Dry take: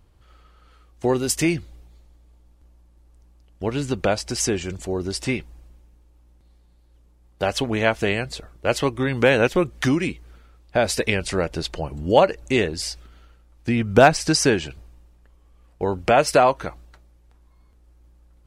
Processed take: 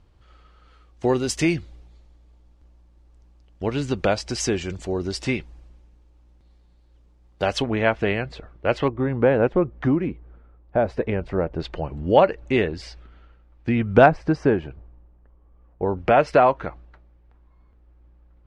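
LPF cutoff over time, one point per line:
6000 Hz
from 7.62 s 2500 Hz
from 8.88 s 1100 Hz
from 11.6 s 2600 Hz
from 14.06 s 1200 Hz
from 15.97 s 2300 Hz

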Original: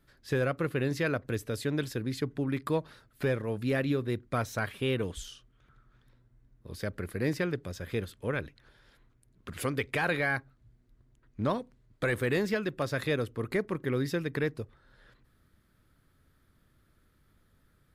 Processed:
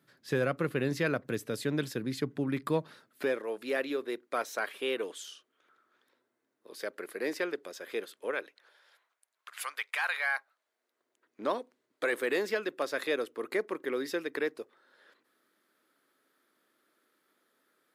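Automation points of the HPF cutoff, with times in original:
HPF 24 dB/oct
2.82 s 140 Hz
3.45 s 340 Hz
8.24 s 340 Hz
9.52 s 870 Hz
10.13 s 870 Hz
11.42 s 310 Hz

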